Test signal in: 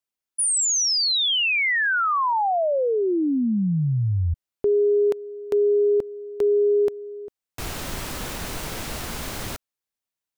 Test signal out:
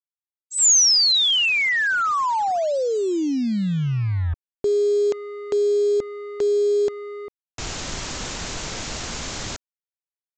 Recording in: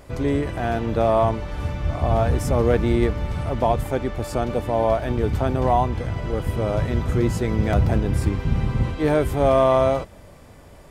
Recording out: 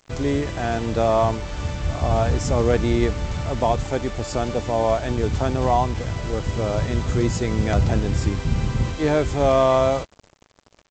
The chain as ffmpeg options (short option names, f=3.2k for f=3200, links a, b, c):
-af "aemphasis=mode=production:type=50fm,aresample=16000,acrusher=bits=5:mix=0:aa=0.5,aresample=44100"